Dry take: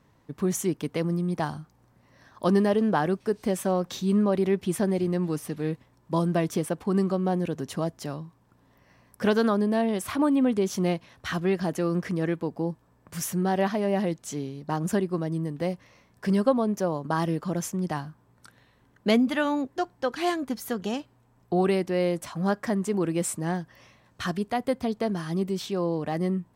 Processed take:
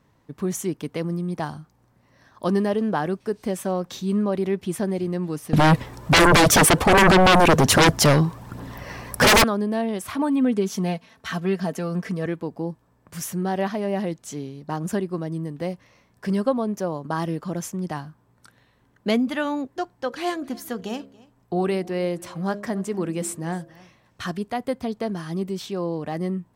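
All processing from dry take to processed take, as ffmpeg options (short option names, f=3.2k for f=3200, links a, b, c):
-filter_complex "[0:a]asettb=1/sr,asplit=3[a][b][c];[a]atrim=end=5.534[d];[b]atrim=start=5.53:end=9.44,asetpts=PTS-STARTPTS,afade=t=in:d=0.004:c=qsin,afade=t=out:st=3.906:d=0.004:c=qsin,aphaser=in_gain=1:out_gain=1:delay=2.7:decay=0.38:speed=1.3:type=triangular,aeval=exprs='0.299*sin(PI/2*8.91*val(0)/0.299)':c=same[e];[c]atrim=start=9.436[f];[d][e]acrossfade=d=0.004:c1=hsin:c2=qsin[g];[g][f]acrossfade=d=0.004:c1=qsin:c2=hsin,asettb=1/sr,asplit=3[h][i][j];[h]atrim=end=10.154[k];[i]atrim=start=10.15:end=12.26,asetpts=PTS-STARTPTS,afade=t=in:d=0.004:c=qsin,afade=t=out:st=2.106:d=0.004:c=qsin,highpass=82,aecho=1:1:4.5:0.56,atrim=end_sample=93051[l];[j]atrim=start=12.256[m];[k][l]acrossfade=d=0.004:c1=hsin:c2=qsin[n];[n][m]acrossfade=d=0.004:c1=qsin:c2=hsin,asettb=1/sr,asplit=3[o][p][q];[o]atrim=end=19.954[r];[p]atrim=start=19.95:end=24.27,asetpts=PTS-STARTPTS,afade=t=in:d=0.004:c=qsin,afade=t=out:st=4.316:d=0.004:c=qsin,bandreject=f=68.03:t=h:w=4,bandreject=f=136.06:t=h:w=4,bandreject=f=204.09:t=h:w=4,bandreject=f=272.12:t=h:w=4,bandreject=f=340.15:t=h:w=4,bandreject=f=408.18:t=h:w=4,bandreject=f=476.21:t=h:w=4,bandreject=f=544.24:t=h:w=4,bandreject=f=612.27:t=h:w=4,bandreject=f=680.3:t=h:w=4,aecho=1:1:280:0.075,atrim=end_sample=190512[s];[q]atrim=start=24.266[t];[r][s]acrossfade=d=0.004:c1=hsin:c2=qsin[u];[u][t]acrossfade=d=0.004:c1=qsin:c2=hsin"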